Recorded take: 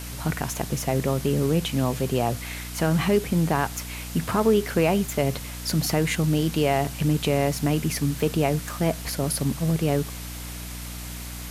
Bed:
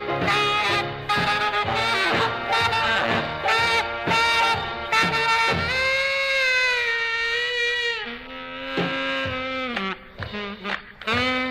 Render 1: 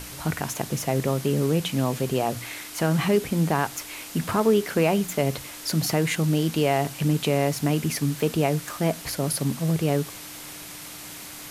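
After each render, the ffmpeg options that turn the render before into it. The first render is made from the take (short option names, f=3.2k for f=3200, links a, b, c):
-af "bandreject=f=60:t=h:w=6,bandreject=f=120:t=h:w=6,bandreject=f=180:t=h:w=6,bandreject=f=240:t=h:w=6"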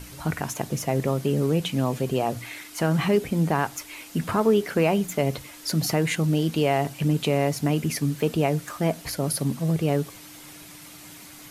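-af "afftdn=nr=7:nf=-40"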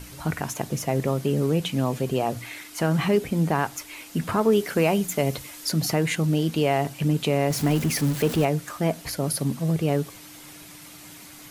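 -filter_complex "[0:a]asettb=1/sr,asplit=3[a][b][c];[a]atrim=end=4.524[d];[b]atrim=start=4.52:end=5.69,asetpts=PTS-STARTPTS,afade=t=in:d=0.004:c=qsin,afade=t=out:st=1.166:d=0.004:c=qsin,highshelf=f=4.7k:g=5.5[e];[c]atrim=start=5.686[f];[d][e]acrossfade=d=0.004:c1=hsin:c2=qsin[g];[g][f]acrossfade=d=0.004:c1=qsin:c2=hsin,asettb=1/sr,asplit=3[h][i][j];[h]atrim=end=7.504[k];[i]atrim=start=7.5:end=8.45,asetpts=PTS-STARTPTS,afade=t=in:d=0.004:c=qsin,afade=t=out:st=0.946:d=0.004:c=qsin,aeval=exprs='val(0)+0.5*0.0376*sgn(val(0))':c=same[l];[j]atrim=start=8.446[m];[k][l]acrossfade=d=0.004:c1=hsin:c2=qsin[n];[n][m]acrossfade=d=0.004:c1=qsin:c2=hsin"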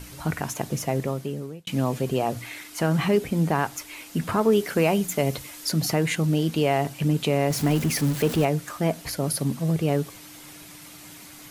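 -filter_complex "[0:a]asplit=2[a][b];[a]atrim=end=1.67,asetpts=PTS-STARTPTS,afade=t=out:st=0.84:d=0.83[c];[b]atrim=start=1.67,asetpts=PTS-STARTPTS,afade=t=in:d=0.004:c=hsin[d];[c][d]concat=n=2:v=0:a=1"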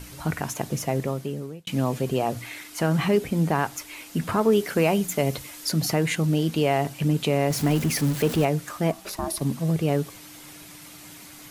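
-filter_complex "[0:a]asplit=3[a][b][c];[a]afade=t=out:st=8.91:d=0.02[d];[b]aeval=exprs='val(0)*sin(2*PI*490*n/s)':c=same,afade=t=in:st=8.91:d=0.02,afade=t=out:st=9.4:d=0.02[e];[c]afade=t=in:st=9.4:d=0.02[f];[d][e][f]amix=inputs=3:normalize=0"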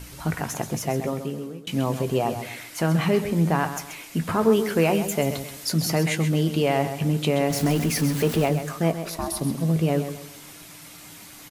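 -filter_complex "[0:a]asplit=2[a][b];[b]adelay=18,volume=-12dB[c];[a][c]amix=inputs=2:normalize=0,asplit=2[d][e];[e]aecho=0:1:131|262|393|524:0.316|0.104|0.0344|0.0114[f];[d][f]amix=inputs=2:normalize=0"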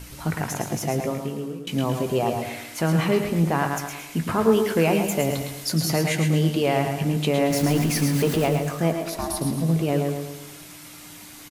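-af "aecho=1:1:110|220|330|440|550:0.447|0.183|0.0751|0.0308|0.0126"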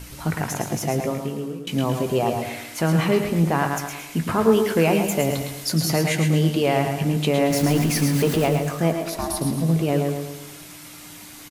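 -af "volume=1.5dB"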